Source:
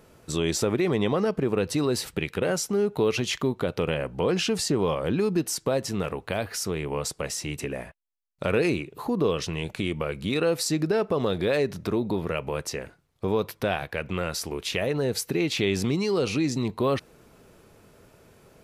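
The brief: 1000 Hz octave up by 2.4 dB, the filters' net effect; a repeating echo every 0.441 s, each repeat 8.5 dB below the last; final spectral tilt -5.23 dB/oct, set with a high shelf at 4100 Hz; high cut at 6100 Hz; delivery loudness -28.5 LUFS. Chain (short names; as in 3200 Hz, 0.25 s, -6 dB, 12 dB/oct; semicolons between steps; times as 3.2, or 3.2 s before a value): LPF 6100 Hz; bell 1000 Hz +3.5 dB; high shelf 4100 Hz -6 dB; feedback echo 0.441 s, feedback 38%, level -8.5 dB; gain -2 dB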